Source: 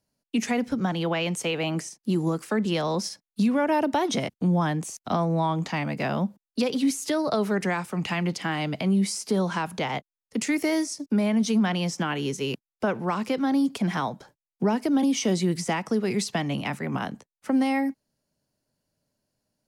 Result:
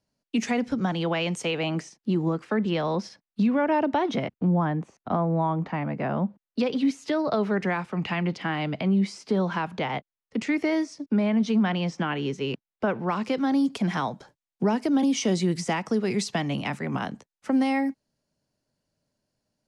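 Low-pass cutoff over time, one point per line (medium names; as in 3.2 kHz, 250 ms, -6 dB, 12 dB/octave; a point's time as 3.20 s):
1.45 s 6.8 kHz
2.22 s 3.1 kHz
4.04 s 3.1 kHz
4.65 s 1.6 kHz
6.11 s 1.6 kHz
6.59 s 3.4 kHz
12.93 s 3.4 kHz
13.43 s 8.1 kHz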